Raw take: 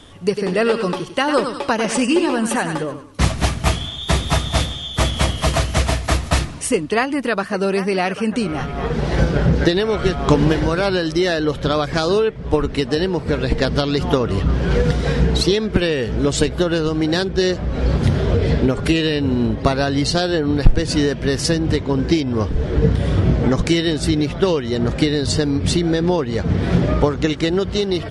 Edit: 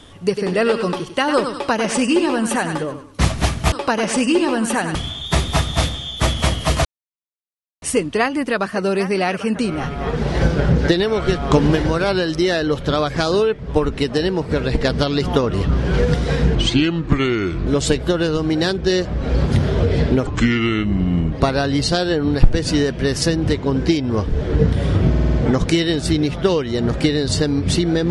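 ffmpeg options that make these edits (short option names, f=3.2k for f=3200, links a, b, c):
-filter_complex "[0:a]asplit=14[a][b][c][d][e][f][g][h][i][j][k][l][m][n];[a]atrim=end=3.722[o];[b]atrim=start=1.528:end=2.762[p];[c]atrim=start=3.718:end=5.62,asetpts=PTS-STARTPTS,afade=t=out:st=1.898:d=0.004:c=hsin[q];[d]atrim=start=5.62:end=6.59,asetpts=PTS-STARTPTS,volume=0[r];[e]atrim=start=6.59:end=15.324,asetpts=PTS-STARTPTS,afade=t=in:d=0.004:c=hsin[s];[f]atrim=start=15.32:end=16.18,asetpts=PTS-STARTPTS,asetrate=33957,aresample=44100[t];[g]atrim=start=16.176:end=18.784[u];[h]atrim=start=18.78:end=19.55,asetpts=PTS-STARTPTS,asetrate=32193,aresample=44100,atrim=end_sample=46516,asetpts=PTS-STARTPTS[v];[i]atrim=start=19.546:end=23.372[w];[j]atrim=start=23.318:end=23.372[x];[k]atrim=start=23.318:end=23.372[y];[l]atrim=start=23.318:end=23.372[z];[m]atrim=start=23.318:end=23.372[aa];[n]atrim=start=23.318[ab];[o][p]acrossfade=d=0.004:c1=hsin:c2=hsin[ac];[q][r][s]concat=n=3:v=0:a=1[ad];[ac][ad]acrossfade=d=0.004:c1=hsin:c2=hsin[ae];[ae][t]acrossfade=d=0.004:c1=hsin:c2=hsin[af];[af][u]acrossfade=d=0.004:c1=hsin:c2=hsin[ag];[ag][v]acrossfade=d=0.004:c1=hsin:c2=hsin[ah];[ah][w]acrossfade=d=0.004:c1=hsin:c2=hsin[ai];[ai][x]acrossfade=d=0.004:c1=hsin:c2=hsin[aj];[aj][y]acrossfade=d=0.004:c1=hsin:c2=hsin[ak];[ak][z]acrossfade=d=0.004:c1=hsin:c2=hsin[al];[al][aa]acrossfade=d=0.004:c1=hsin:c2=hsin[am];[am][ab]acrossfade=d=0.004:c1=hsin:c2=hsin"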